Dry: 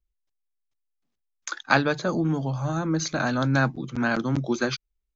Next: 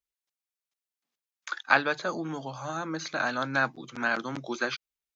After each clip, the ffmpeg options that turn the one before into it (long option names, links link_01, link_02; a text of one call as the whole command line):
ffmpeg -i in.wav -filter_complex "[0:a]acrossover=split=3600[link_01][link_02];[link_02]acompressor=threshold=-46dB:ratio=4:attack=1:release=60[link_03];[link_01][link_03]amix=inputs=2:normalize=0,highpass=frequency=1000:poles=1,volume=1.5dB" out.wav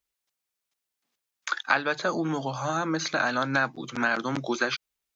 ffmpeg -i in.wav -af "acompressor=threshold=-30dB:ratio=2.5,volume=7dB" out.wav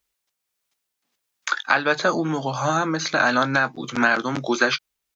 ffmpeg -i in.wav -filter_complex "[0:a]tremolo=f=1.5:d=0.32,asplit=2[link_01][link_02];[link_02]adelay=20,volume=-14dB[link_03];[link_01][link_03]amix=inputs=2:normalize=0,volume=7dB" out.wav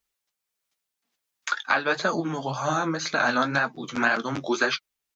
ffmpeg -i in.wav -af "flanger=delay=4.3:depth=7.7:regen=35:speed=1.9:shape=sinusoidal" out.wav